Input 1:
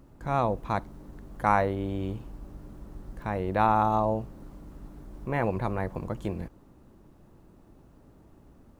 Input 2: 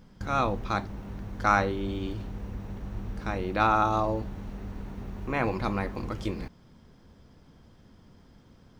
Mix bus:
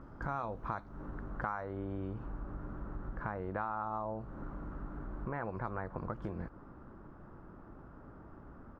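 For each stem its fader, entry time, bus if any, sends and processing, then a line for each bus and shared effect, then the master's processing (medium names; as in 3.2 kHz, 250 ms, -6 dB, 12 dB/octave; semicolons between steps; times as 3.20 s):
+2.0 dB, 0.00 s, no send, compression 2.5:1, threshold -37 dBFS, peak gain reduction 13.5 dB; resonant low-pass 1.4 kHz, resonance Q 3.4
-14.5 dB, 13 ms, polarity flipped, no send, auto duck -11 dB, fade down 1.70 s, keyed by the first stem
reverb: none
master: compression 3:1, threshold -36 dBFS, peak gain reduction 11 dB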